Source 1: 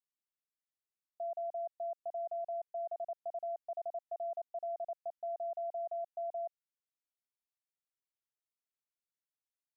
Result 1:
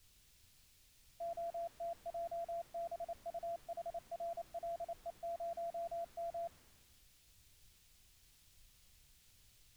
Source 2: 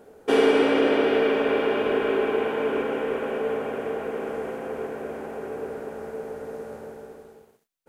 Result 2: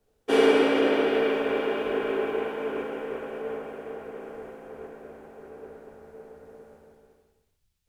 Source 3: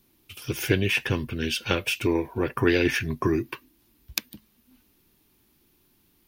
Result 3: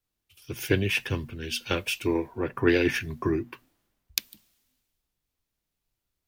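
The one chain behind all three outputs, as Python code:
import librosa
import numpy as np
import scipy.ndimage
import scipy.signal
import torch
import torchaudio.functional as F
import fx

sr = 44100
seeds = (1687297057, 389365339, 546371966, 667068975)

y = fx.hum_notches(x, sr, base_hz=60, count=4)
y = fx.dmg_noise_colour(y, sr, seeds[0], colour='pink', level_db=-59.0)
y = fx.band_widen(y, sr, depth_pct=70)
y = y * 10.0 ** (-4.0 / 20.0)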